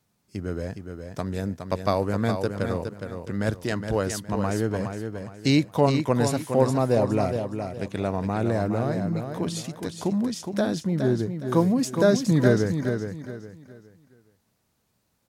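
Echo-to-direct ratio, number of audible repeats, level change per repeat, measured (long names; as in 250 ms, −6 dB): −6.5 dB, 3, −10.5 dB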